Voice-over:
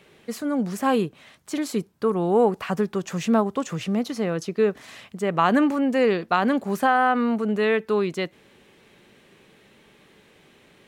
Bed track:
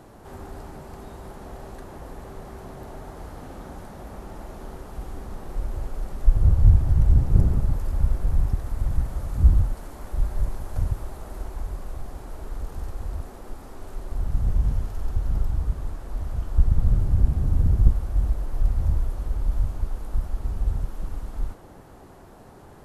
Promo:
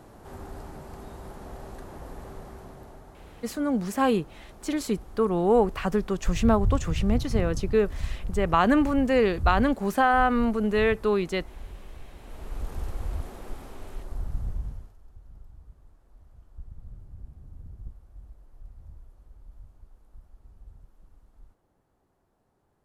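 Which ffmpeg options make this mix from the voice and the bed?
ffmpeg -i stem1.wav -i stem2.wav -filter_complex "[0:a]adelay=3150,volume=-1.5dB[link_01];[1:a]volume=7.5dB,afade=type=out:start_time=2.28:duration=0.77:silence=0.398107,afade=type=in:start_time=12.16:duration=0.53:silence=0.334965,afade=type=out:start_time=13.5:duration=1.47:silence=0.0630957[link_02];[link_01][link_02]amix=inputs=2:normalize=0" out.wav

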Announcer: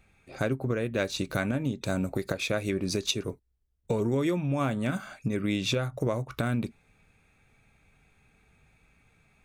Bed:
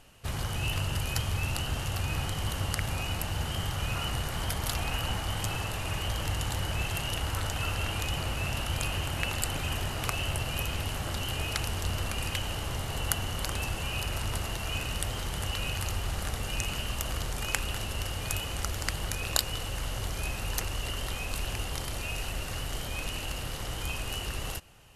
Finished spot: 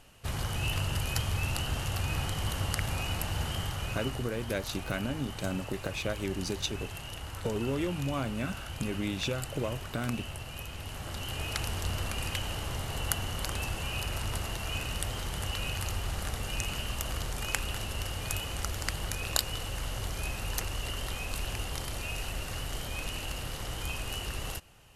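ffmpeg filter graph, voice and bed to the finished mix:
ffmpeg -i stem1.wav -i stem2.wav -filter_complex "[0:a]adelay=3550,volume=-5dB[link_01];[1:a]volume=7dB,afade=type=out:start_time=3.45:duration=0.86:silence=0.375837,afade=type=in:start_time=10.74:duration=0.92:silence=0.421697[link_02];[link_01][link_02]amix=inputs=2:normalize=0" out.wav

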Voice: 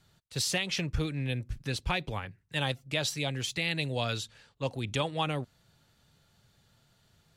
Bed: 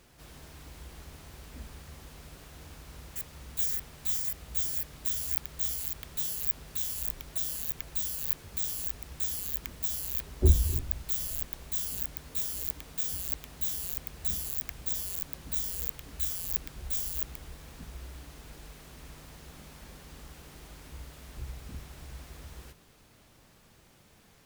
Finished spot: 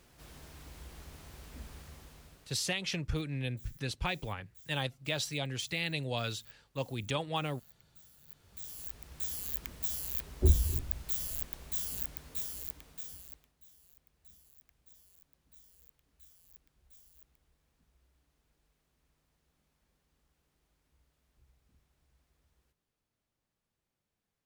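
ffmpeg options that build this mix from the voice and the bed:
ffmpeg -i stem1.wav -i stem2.wav -filter_complex "[0:a]adelay=2150,volume=-3.5dB[link_01];[1:a]volume=21dB,afade=type=out:start_time=1.8:duration=0.92:silence=0.0630957,afade=type=in:start_time=8.27:duration=1.25:silence=0.0668344,afade=type=out:start_time=12.05:duration=1.48:silence=0.0595662[link_02];[link_01][link_02]amix=inputs=2:normalize=0" out.wav

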